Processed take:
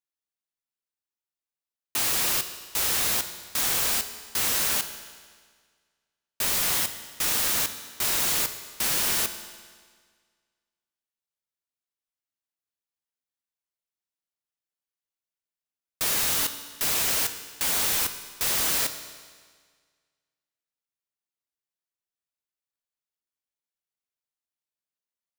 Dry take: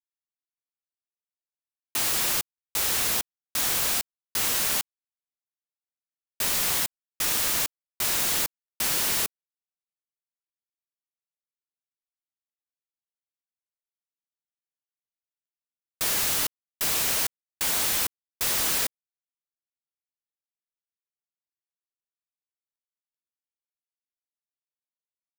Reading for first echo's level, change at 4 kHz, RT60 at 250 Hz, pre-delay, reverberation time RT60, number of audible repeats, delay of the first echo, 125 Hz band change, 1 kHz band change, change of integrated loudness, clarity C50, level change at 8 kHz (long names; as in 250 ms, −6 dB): no echo audible, +0.5 dB, 1.7 s, 14 ms, 1.7 s, no echo audible, no echo audible, +0.5 dB, +0.5 dB, +0.5 dB, 10.5 dB, +0.5 dB